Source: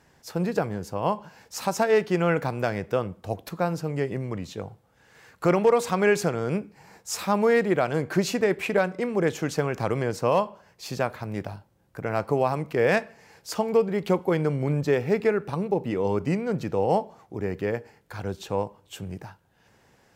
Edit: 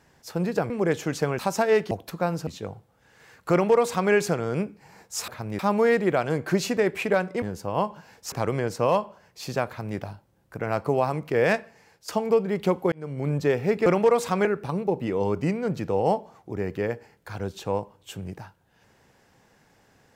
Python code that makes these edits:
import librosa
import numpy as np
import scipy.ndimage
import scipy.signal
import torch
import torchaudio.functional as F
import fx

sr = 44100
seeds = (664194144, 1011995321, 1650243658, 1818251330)

y = fx.edit(x, sr, fx.swap(start_s=0.7, length_s=0.9, other_s=9.06, other_length_s=0.69),
    fx.cut(start_s=2.12, length_s=1.18),
    fx.cut(start_s=3.86, length_s=0.56),
    fx.duplicate(start_s=5.47, length_s=0.59, to_s=15.29),
    fx.duplicate(start_s=11.1, length_s=0.31, to_s=7.23),
    fx.fade_out_to(start_s=12.84, length_s=0.67, curve='qsin', floor_db=-11.5),
    fx.fade_in_span(start_s=14.35, length_s=0.42), tone=tone)